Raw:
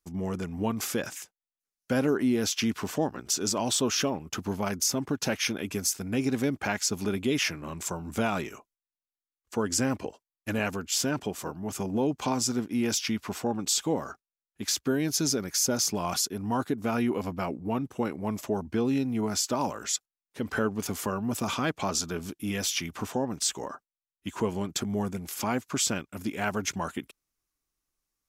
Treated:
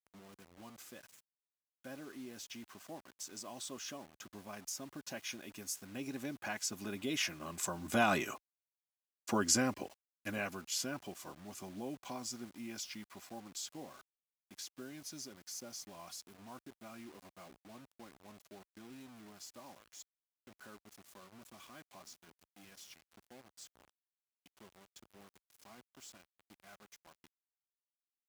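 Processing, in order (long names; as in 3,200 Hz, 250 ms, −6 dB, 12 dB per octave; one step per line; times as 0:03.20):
source passing by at 0:08.69, 10 m/s, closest 1.5 metres
low-shelf EQ 260 Hz −9 dB
notch comb filter 450 Hz
bit-depth reduction 12 bits, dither none
high-pass filter 44 Hz
level +14.5 dB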